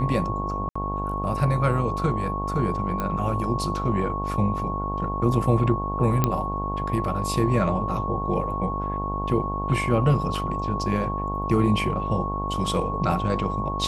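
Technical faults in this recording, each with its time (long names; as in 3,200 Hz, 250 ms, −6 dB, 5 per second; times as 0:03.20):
mains buzz 50 Hz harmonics 22 −30 dBFS
whistle 1,100 Hz −29 dBFS
0:00.69–0:00.76: drop-out 65 ms
0:03.00: click −14 dBFS
0:06.24: click −7 dBFS
0:10.35: drop-out 2.4 ms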